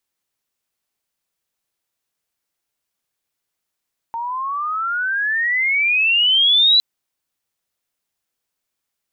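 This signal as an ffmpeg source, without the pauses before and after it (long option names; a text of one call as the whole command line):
ffmpeg -f lavfi -i "aevalsrc='pow(10,(-22.5+13*t/2.66)/20)*sin(2*PI*910*2.66/log(4000/910)*(exp(log(4000/910)*t/2.66)-1))':duration=2.66:sample_rate=44100" out.wav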